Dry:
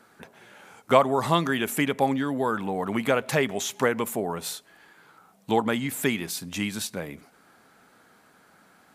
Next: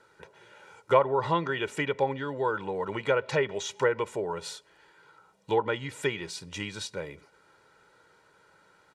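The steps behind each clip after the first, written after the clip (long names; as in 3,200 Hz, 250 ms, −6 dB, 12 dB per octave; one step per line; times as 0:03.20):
low-pass filter 7,100 Hz 12 dB per octave
treble cut that deepens with the level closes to 2,300 Hz, closed at −17.5 dBFS
comb filter 2.1 ms, depth 79%
level −5 dB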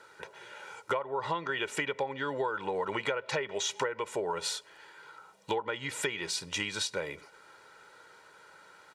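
low-shelf EQ 340 Hz −11 dB
downward compressor 16 to 1, threshold −35 dBFS, peak gain reduction 18.5 dB
level +7 dB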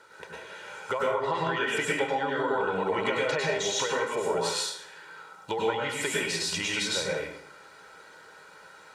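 dense smooth reverb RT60 0.69 s, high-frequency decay 0.8×, pre-delay 90 ms, DRR −4 dB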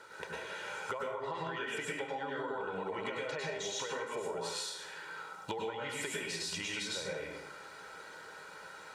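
downward compressor 6 to 1, threshold −37 dBFS, peak gain reduction 14.5 dB
level +1 dB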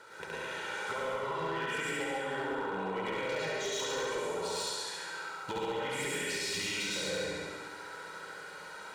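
feedback delay that plays each chunk backwards 113 ms, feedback 48%, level −6.5 dB
flutter between parallel walls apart 11.8 metres, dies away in 1.4 s
hard clipping −29 dBFS, distortion −19 dB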